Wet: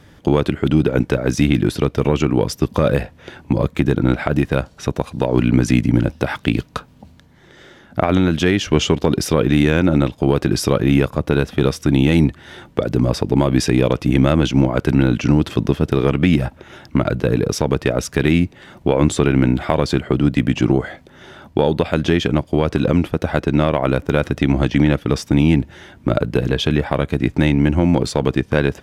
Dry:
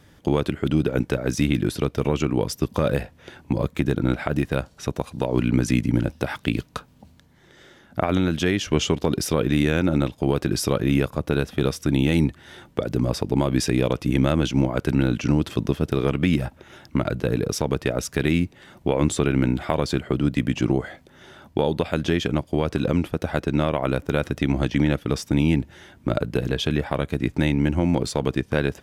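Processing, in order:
high-shelf EQ 6,300 Hz −6.5 dB
in parallel at −9.5 dB: soft clipping −15.5 dBFS, distortion −12 dB
on the sum: level +4 dB

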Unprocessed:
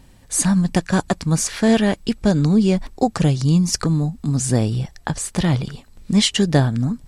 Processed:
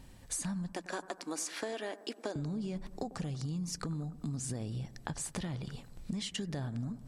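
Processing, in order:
0:00.72–0:02.36: Chebyshev high-pass filter 290 Hz, order 4
brickwall limiter −11.5 dBFS, peak gain reduction 8 dB
downward compressor 6 to 1, threshold −30 dBFS, peak gain reduction 14.5 dB
bucket-brigade delay 96 ms, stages 1,024, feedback 68%, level −16.5 dB
level −5.5 dB

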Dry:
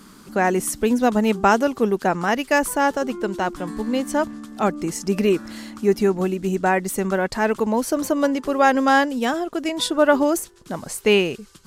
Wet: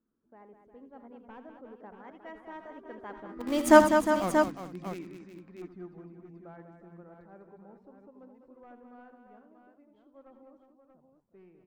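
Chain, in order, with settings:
wavefolder on the positive side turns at −12 dBFS
source passing by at 0:03.77, 36 m/s, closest 2.3 metres
low-pass that shuts in the quiet parts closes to 850 Hz, open at −32 dBFS
in parallel at −4.5 dB: centre clipping without the shift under −33.5 dBFS
on the sum: multi-tap delay 70/82/200/357/417/633 ms −19/−11.5/−8/−10.5/−19.5/−8 dB
level +1.5 dB

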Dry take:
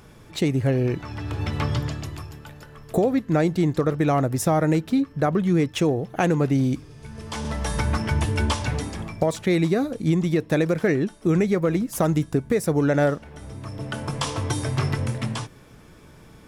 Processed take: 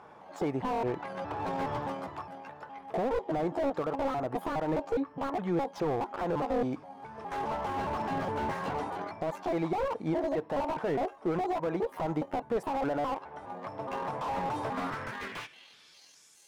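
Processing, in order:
pitch shifter gated in a rhythm +10.5 semitones, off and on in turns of 207 ms
band-pass filter sweep 860 Hz → 7,600 Hz, 0:14.61–0:16.34
brickwall limiter −27.5 dBFS, peak gain reduction 12 dB
buffer that repeats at 0:06.32/0:08.92, samples 512, times 2
slew-rate limiting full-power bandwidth 10 Hz
level +8 dB

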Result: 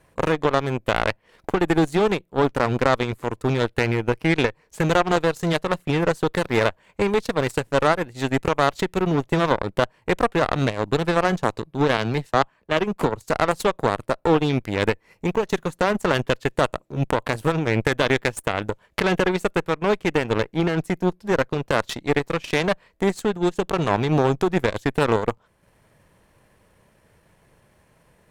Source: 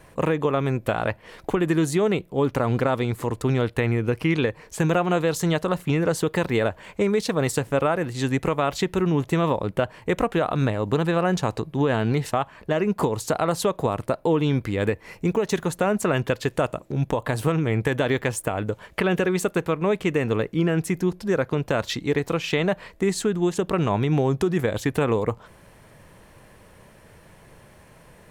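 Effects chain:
transient designer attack −2 dB, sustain −6 dB
harmonic generator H 2 −8 dB, 3 −24 dB, 7 −22 dB, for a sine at −10.5 dBFS
0:11.97–0:13.30: multiband upward and downward expander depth 70%
level +4 dB

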